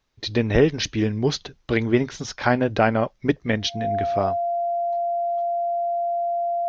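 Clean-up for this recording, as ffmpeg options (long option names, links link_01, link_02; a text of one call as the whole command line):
ffmpeg -i in.wav -af "bandreject=frequency=690:width=30" out.wav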